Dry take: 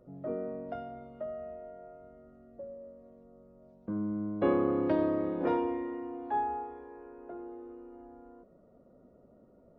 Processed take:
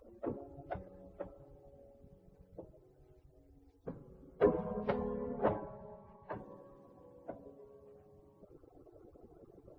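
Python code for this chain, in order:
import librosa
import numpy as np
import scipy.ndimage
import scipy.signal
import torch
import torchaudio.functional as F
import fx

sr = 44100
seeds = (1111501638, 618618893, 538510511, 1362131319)

y = fx.hpss_only(x, sr, part='percussive')
y = fx.air_absorb(y, sr, metres=170.0, at=(5.1, 6.32))
y = F.gain(torch.from_numpy(y), 8.0).numpy()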